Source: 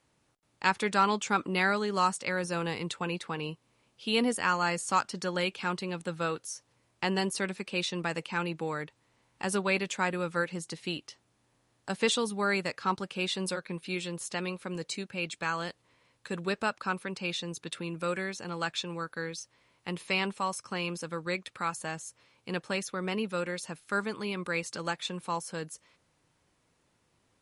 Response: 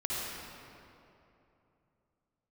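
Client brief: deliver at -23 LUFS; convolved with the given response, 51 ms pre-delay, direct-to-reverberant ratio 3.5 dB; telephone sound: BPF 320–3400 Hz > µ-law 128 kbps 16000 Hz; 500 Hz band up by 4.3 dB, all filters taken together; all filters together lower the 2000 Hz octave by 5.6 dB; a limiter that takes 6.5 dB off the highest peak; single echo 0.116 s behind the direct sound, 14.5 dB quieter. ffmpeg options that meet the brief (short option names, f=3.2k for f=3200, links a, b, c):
-filter_complex "[0:a]equalizer=f=500:t=o:g=6.5,equalizer=f=2k:t=o:g=-7.5,alimiter=limit=-18.5dB:level=0:latency=1,aecho=1:1:116:0.188,asplit=2[a][b];[1:a]atrim=start_sample=2205,adelay=51[c];[b][c]afir=irnorm=-1:irlink=0,volume=-9.5dB[d];[a][d]amix=inputs=2:normalize=0,highpass=320,lowpass=3.4k,volume=9.5dB" -ar 16000 -c:a pcm_mulaw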